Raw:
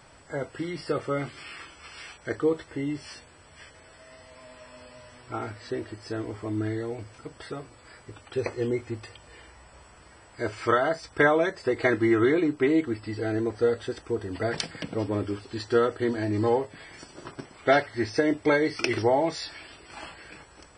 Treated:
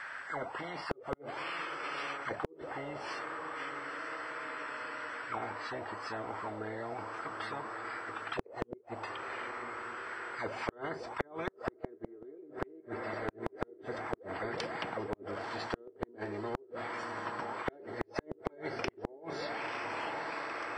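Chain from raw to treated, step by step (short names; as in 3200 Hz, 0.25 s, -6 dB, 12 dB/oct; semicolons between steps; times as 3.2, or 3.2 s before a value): on a send: diffused feedback echo 0.952 s, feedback 61%, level -13 dB; on the sum: auto-wah 390–1700 Hz, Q 19, down, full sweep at -23.5 dBFS; flipped gate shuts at -31 dBFS, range -42 dB; spectral compressor 4:1; gain +16.5 dB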